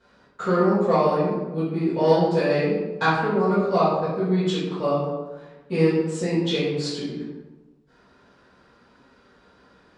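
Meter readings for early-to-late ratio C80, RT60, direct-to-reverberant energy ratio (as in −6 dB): 2.5 dB, 1.1 s, −16.0 dB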